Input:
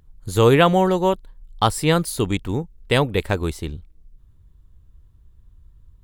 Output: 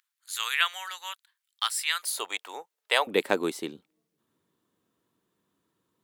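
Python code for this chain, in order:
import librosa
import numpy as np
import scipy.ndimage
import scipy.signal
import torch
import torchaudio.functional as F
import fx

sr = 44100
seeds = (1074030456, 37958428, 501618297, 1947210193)

y = fx.highpass(x, sr, hz=fx.steps((0.0, 1500.0), (2.03, 640.0), (3.07, 240.0)), slope=24)
y = y * 10.0 ** (-1.5 / 20.0)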